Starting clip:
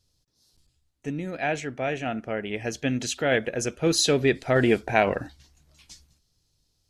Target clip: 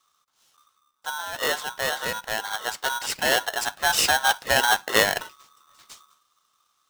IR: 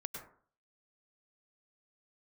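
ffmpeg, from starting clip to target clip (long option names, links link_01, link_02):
-filter_complex "[0:a]acrossover=split=230|1100|2600[link_01][link_02][link_03][link_04];[link_01]acompressor=threshold=-42dB:ratio=6[link_05];[link_05][link_02][link_03][link_04]amix=inputs=4:normalize=0,aeval=exprs='val(0)*sgn(sin(2*PI*1200*n/s))':channel_layout=same,volume=1.5dB"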